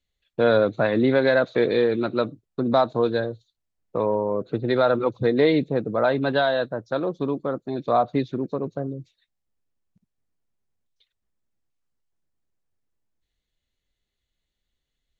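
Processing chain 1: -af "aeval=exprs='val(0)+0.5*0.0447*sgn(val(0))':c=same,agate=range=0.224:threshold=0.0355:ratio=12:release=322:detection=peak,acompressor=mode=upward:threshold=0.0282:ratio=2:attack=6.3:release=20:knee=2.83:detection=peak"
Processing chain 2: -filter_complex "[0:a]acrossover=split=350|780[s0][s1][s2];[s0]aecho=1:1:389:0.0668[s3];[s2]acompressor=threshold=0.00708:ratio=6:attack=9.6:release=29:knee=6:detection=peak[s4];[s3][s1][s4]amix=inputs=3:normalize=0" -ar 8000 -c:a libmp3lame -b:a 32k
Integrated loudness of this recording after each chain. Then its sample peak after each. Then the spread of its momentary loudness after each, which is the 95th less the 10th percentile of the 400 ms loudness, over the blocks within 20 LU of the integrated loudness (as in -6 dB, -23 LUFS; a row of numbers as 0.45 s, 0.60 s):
-21.5 LUFS, -24.5 LUFS; -6.5 dBFS, -9.5 dBFS; 21 LU, 10 LU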